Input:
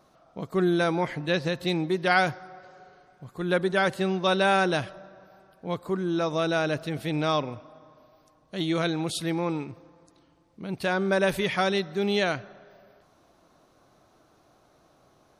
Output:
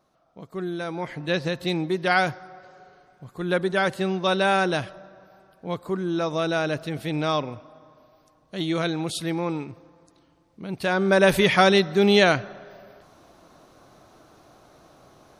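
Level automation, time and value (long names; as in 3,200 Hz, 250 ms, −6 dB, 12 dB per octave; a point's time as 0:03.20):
0:00.84 −7 dB
0:01.32 +1 dB
0:10.75 +1 dB
0:11.39 +8 dB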